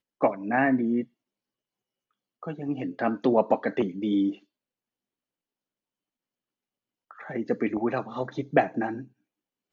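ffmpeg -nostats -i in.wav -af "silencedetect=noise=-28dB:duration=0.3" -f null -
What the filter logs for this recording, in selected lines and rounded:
silence_start: 1.02
silence_end: 2.43 | silence_duration: 1.41
silence_start: 4.30
silence_end: 7.30 | silence_duration: 3.00
silence_start: 9.00
silence_end: 9.72 | silence_duration: 0.73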